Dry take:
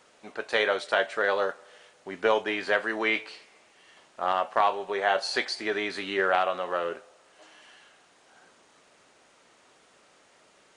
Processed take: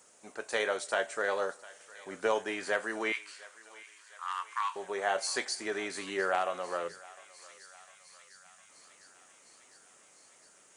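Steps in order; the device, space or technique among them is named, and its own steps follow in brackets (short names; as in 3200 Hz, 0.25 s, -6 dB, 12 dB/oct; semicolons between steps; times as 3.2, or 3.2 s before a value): 6.88–8.69 spectral gain 220–3300 Hz -16 dB; budget condenser microphone (HPF 65 Hz; resonant high shelf 5400 Hz +11.5 dB, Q 1.5); 3.12–4.76 elliptic high-pass 1000 Hz, stop band 40 dB; thinning echo 0.705 s, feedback 79%, high-pass 950 Hz, level -18 dB; gain -5.5 dB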